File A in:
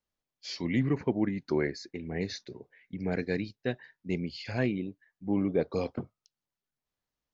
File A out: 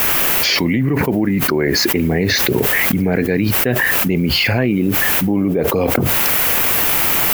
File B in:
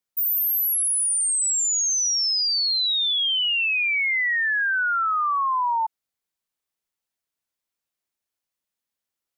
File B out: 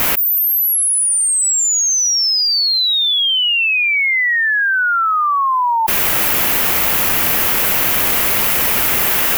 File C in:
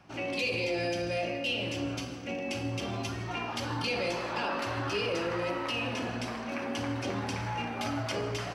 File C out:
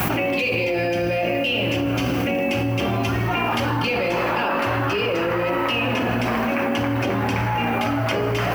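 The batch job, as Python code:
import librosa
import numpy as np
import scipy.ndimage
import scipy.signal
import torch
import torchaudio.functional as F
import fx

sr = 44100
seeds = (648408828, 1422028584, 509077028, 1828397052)

p1 = fx.quant_dither(x, sr, seeds[0], bits=8, dither='triangular')
p2 = x + (p1 * 10.0 ** (-10.0 / 20.0))
p3 = fx.band_shelf(p2, sr, hz=5900.0, db=-9.5, octaves=1.7)
p4 = fx.env_flatten(p3, sr, amount_pct=100)
y = p4 * 10.0 ** (5.0 / 20.0)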